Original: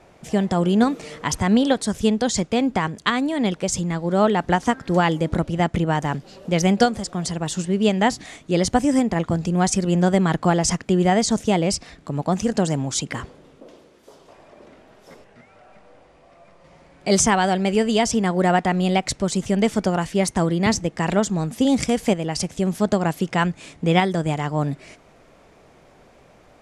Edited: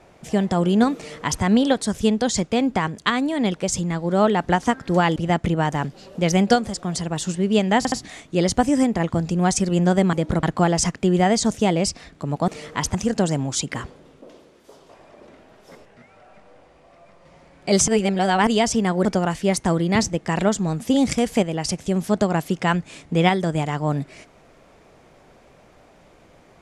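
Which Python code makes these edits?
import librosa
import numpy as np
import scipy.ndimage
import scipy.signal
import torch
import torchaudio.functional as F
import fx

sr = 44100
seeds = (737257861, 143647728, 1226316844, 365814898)

y = fx.edit(x, sr, fx.duplicate(start_s=0.96, length_s=0.47, to_s=12.34),
    fx.move(start_s=5.16, length_s=0.3, to_s=10.29),
    fx.stutter(start_s=8.08, slice_s=0.07, count=3),
    fx.reverse_span(start_s=17.27, length_s=0.59),
    fx.cut(start_s=18.44, length_s=1.32), tone=tone)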